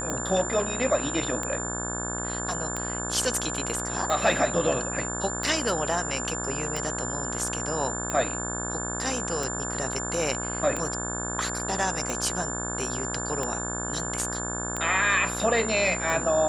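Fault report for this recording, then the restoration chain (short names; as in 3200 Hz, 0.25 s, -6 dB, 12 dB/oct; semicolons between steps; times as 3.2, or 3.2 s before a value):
buzz 60 Hz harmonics 29 -34 dBFS
tick 45 rpm -16 dBFS
tone 7200 Hz -32 dBFS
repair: de-click; de-hum 60 Hz, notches 29; notch 7200 Hz, Q 30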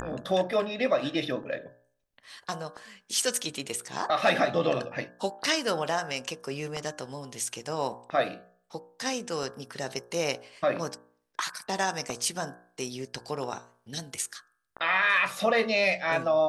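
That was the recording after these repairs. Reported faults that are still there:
none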